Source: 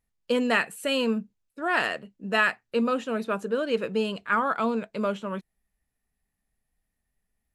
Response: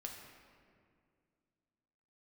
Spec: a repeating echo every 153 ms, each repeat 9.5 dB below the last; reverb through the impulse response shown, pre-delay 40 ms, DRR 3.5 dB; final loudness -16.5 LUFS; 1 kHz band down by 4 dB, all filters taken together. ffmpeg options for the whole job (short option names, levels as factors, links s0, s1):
-filter_complex "[0:a]equalizer=f=1000:t=o:g=-5.5,aecho=1:1:153|306|459|612:0.335|0.111|0.0365|0.012,asplit=2[s0][s1];[1:a]atrim=start_sample=2205,adelay=40[s2];[s1][s2]afir=irnorm=-1:irlink=0,volume=0.891[s3];[s0][s3]amix=inputs=2:normalize=0,volume=2.99"